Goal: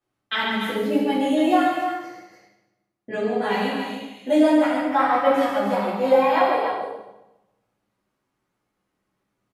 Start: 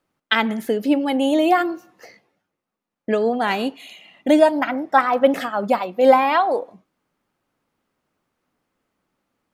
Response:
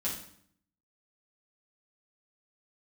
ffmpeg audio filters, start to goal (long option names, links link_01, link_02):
-filter_complex "[0:a]flanger=delay=2.6:depth=7.5:regen=-61:speed=0.74:shape=sinusoidal,aecho=1:1:139.9|291.5:0.501|0.447[link_01];[1:a]atrim=start_sample=2205,asetrate=28224,aresample=44100[link_02];[link_01][link_02]afir=irnorm=-1:irlink=0,volume=-7dB"